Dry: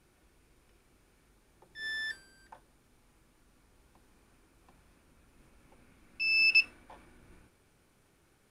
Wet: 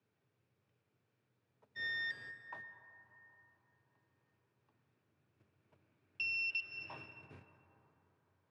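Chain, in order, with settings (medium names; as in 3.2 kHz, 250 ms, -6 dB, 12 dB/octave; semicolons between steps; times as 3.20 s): gate -56 dBFS, range -17 dB; reverberation RT60 4.0 s, pre-delay 98 ms, DRR 11 dB; frequency shift +76 Hz; low-pass 4.4 kHz 12 dB/octave; compression 8:1, threshold -38 dBFS, peak gain reduction 17.5 dB; trim +1.5 dB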